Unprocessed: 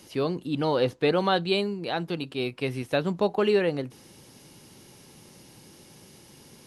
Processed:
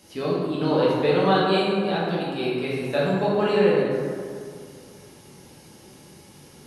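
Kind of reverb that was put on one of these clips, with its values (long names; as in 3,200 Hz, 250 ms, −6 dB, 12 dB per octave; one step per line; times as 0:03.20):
dense smooth reverb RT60 2.3 s, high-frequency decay 0.45×, DRR −7 dB
level −4 dB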